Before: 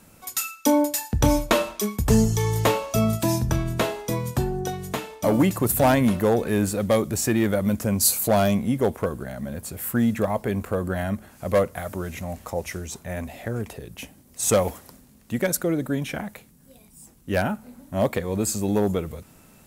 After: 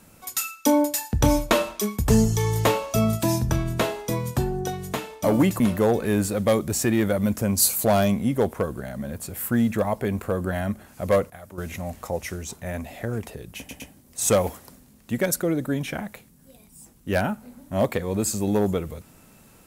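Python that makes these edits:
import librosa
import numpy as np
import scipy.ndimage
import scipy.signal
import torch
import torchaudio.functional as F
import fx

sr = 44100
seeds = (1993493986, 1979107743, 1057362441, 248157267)

y = fx.edit(x, sr, fx.cut(start_s=5.6, length_s=0.43),
    fx.clip_gain(start_s=11.73, length_s=0.28, db=-11.0),
    fx.stutter(start_s=14.01, slice_s=0.11, count=3), tone=tone)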